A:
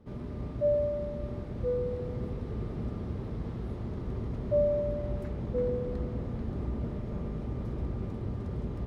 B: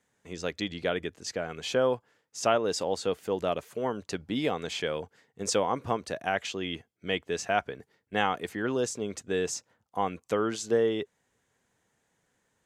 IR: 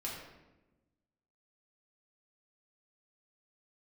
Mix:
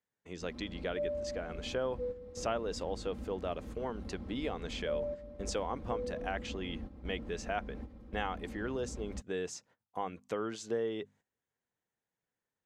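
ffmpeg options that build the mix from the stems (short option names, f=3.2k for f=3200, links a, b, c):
-filter_complex "[0:a]aecho=1:1:3.8:0.95,adelay=350,volume=-8dB[a];[1:a]bandreject=f=50:t=h:w=6,bandreject=f=100:t=h:w=6,bandreject=f=150:t=h:w=6,bandreject=f=200:t=h:w=6,bandreject=f=250:t=h:w=6,agate=range=-14dB:threshold=-55dB:ratio=16:detection=peak,highshelf=f=8k:g=-11,volume=-3.5dB,asplit=2[b][c];[c]apad=whole_len=406646[d];[a][d]sidechaingate=range=-11dB:threshold=-51dB:ratio=16:detection=peak[e];[e][b]amix=inputs=2:normalize=0,acompressor=threshold=-40dB:ratio=1.5"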